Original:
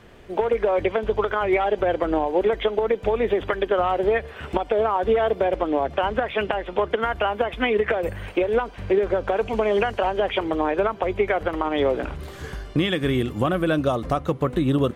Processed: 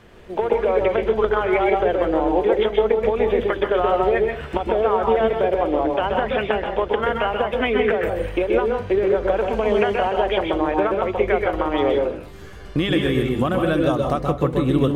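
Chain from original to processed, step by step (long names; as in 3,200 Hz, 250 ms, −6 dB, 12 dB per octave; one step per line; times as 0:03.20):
0:11.99–0:12.65: tuned comb filter 100 Hz, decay 0.18 s, harmonics all, mix 90%
convolution reverb RT60 0.35 s, pre-delay 128 ms, DRR 2.5 dB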